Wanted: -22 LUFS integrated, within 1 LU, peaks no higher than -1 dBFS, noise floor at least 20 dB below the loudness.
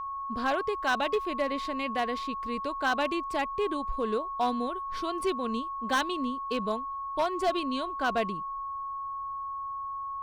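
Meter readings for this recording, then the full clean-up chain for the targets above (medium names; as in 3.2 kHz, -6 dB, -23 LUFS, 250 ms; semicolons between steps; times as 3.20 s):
clipped samples 0.5%; clipping level -20.5 dBFS; steady tone 1.1 kHz; tone level -33 dBFS; loudness -31.0 LUFS; peak level -20.5 dBFS; loudness target -22.0 LUFS
-> clip repair -20.5 dBFS; band-stop 1.1 kHz, Q 30; trim +9 dB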